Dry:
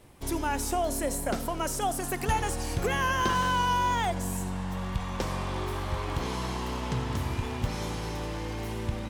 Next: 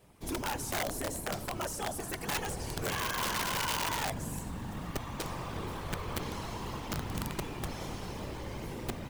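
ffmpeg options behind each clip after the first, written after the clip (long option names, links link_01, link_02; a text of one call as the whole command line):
ffmpeg -i in.wav -af "acrusher=bits=5:mode=log:mix=0:aa=0.000001,afftfilt=real='hypot(re,im)*cos(2*PI*random(0))':imag='hypot(re,im)*sin(2*PI*random(1))':win_size=512:overlap=0.75,aeval=exprs='(mod(21.1*val(0)+1,2)-1)/21.1':channel_layout=same" out.wav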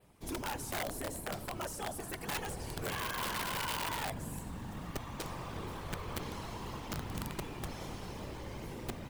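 ffmpeg -i in.wav -af "adynamicequalizer=threshold=0.00224:dfrequency=6200:dqfactor=2.2:tfrequency=6200:tqfactor=2.2:attack=5:release=100:ratio=0.375:range=2.5:mode=cutabove:tftype=bell,volume=-3.5dB" out.wav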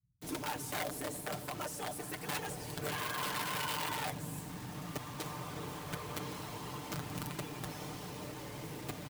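ffmpeg -i in.wav -filter_complex "[0:a]highpass=82,aecho=1:1:6.7:0.58,acrossover=split=120[link_01][link_02];[link_02]acrusher=bits=7:mix=0:aa=0.000001[link_03];[link_01][link_03]amix=inputs=2:normalize=0,volume=-1.5dB" out.wav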